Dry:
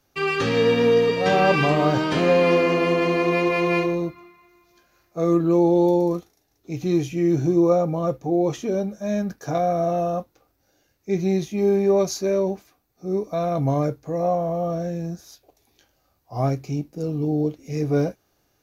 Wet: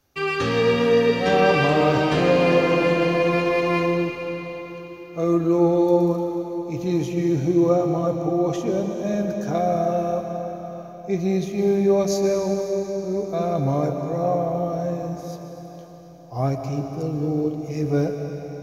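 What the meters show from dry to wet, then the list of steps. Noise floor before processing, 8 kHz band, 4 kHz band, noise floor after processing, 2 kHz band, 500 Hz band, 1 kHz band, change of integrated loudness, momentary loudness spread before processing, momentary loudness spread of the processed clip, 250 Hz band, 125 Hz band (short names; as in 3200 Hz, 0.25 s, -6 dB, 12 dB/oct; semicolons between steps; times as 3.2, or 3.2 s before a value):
-68 dBFS, n/a, +0.5 dB, -39 dBFS, +0.5 dB, +0.5 dB, +0.5 dB, 0.0 dB, 10 LU, 13 LU, +0.5 dB, +0.5 dB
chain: bell 79 Hz +9.5 dB 0.4 oct; digital reverb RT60 4.5 s, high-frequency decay 0.95×, pre-delay 85 ms, DRR 4 dB; gain -1 dB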